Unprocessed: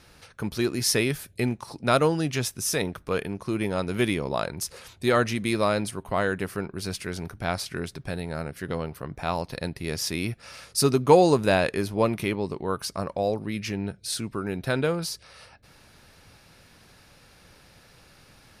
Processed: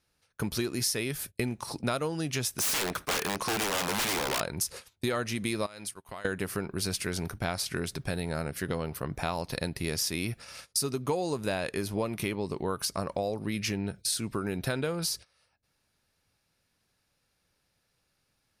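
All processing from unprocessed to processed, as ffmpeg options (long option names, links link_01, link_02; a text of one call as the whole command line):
ffmpeg -i in.wav -filter_complex "[0:a]asettb=1/sr,asplit=3[link_01][link_02][link_03];[link_01]atrim=end=2.584[link_04];[link_02]atrim=start=2.58:end=4.41,asetpts=PTS-STARTPTS,afade=type=in:duration=0.004:curve=qsin,afade=type=out:start_time=1.826:duration=0.004:curve=qsin,aeval=exprs='(mod(16.8*val(0)+1,2)-1)/16.8':channel_layout=same,asplit=2[link_05][link_06];[link_06]highpass=frequency=720:poles=1,volume=19dB,asoftclip=type=tanh:threshold=-24.5dB[link_07];[link_05][link_07]amix=inputs=2:normalize=0,lowpass=frequency=7800:poles=1,volume=-6dB[link_08];[link_03]atrim=start=4.406[link_09];[link_04][link_08]acrossfade=duration=0.004:curve1=hsin:curve2=qsin[link_10];[link_10][link_09]acrossfade=duration=0.004:curve1=qsin:curve2=hsin,asettb=1/sr,asplit=3[link_11][link_12][link_13];[link_11]atrim=end=5.664[link_14];[link_12]atrim=start=5.66:end=6.25,asetpts=PTS-STARTPTS,afade=type=in:duration=0.004:curve=qsin,afade=type=out:start_time=0.586:duration=0.004:curve=qsin,tiltshelf=frequency=800:gain=-5.5,acompressor=threshold=-38dB:ratio=12:attack=3.2:release=140:knee=1:detection=peak[link_15];[link_13]atrim=start=6.246[link_16];[link_14][link_15]acrossfade=duration=0.004:curve1=hsin:curve2=qsin[link_17];[link_17][link_16]acrossfade=duration=0.004:curve1=qsin:curve2=hsin,agate=range=-25dB:threshold=-42dB:ratio=16:detection=peak,highshelf=frequency=4800:gain=7,acompressor=threshold=-29dB:ratio=8,volume=2dB" out.wav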